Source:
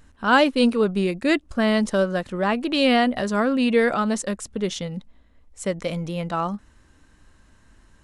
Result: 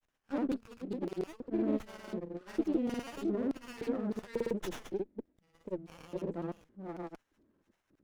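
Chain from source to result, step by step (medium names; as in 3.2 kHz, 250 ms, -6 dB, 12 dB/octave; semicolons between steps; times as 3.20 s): chunks repeated in reverse 372 ms, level -4 dB; compression 2:1, threshold -22 dBFS, peak gain reduction 6.5 dB; rotary cabinet horn 6.3 Hz; LFO band-pass square 1.7 Hz 340–4900 Hz; granulator, pitch spread up and down by 0 st; sliding maximum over 9 samples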